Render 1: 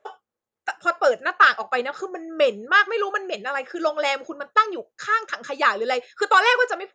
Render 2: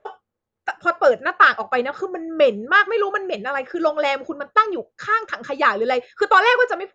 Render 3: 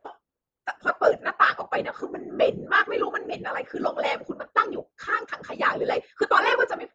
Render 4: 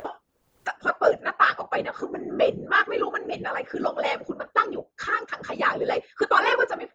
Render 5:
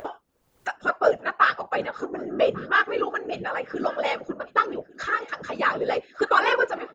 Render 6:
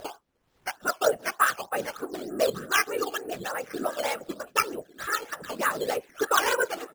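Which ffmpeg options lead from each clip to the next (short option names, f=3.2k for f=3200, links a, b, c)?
-af "aemphasis=mode=reproduction:type=bsi,volume=2.5dB"
-af "afftfilt=real='hypot(re,im)*cos(2*PI*random(0))':imag='hypot(re,im)*sin(2*PI*random(1))':win_size=512:overlap=0.75"
-af "acompressor=mode=upward:threshold=-25dB:ratio=2.5"
-af "aecho=1:1:1148|2296:0.0841|0.0278"
-af "acrusher=samples=8:mix=1:aa=0.000001:lfo=1:lforange=8:lforate=3.3,volume=-3.5dB"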